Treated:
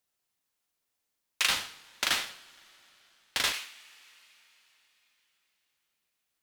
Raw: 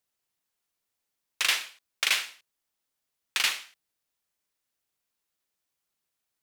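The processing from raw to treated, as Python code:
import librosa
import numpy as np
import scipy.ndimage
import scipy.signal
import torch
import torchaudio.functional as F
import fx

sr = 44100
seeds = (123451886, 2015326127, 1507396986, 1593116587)

y = fx.rev_double_slope(x, sr, seeds[0], early_s=0.47, late_s=4.1, knee_db=-21, drr_db=9.0)
y = fx.ring_mod(y, sr, carrier_hz=810.0, at=(1.48, 3.52), fade=0.02)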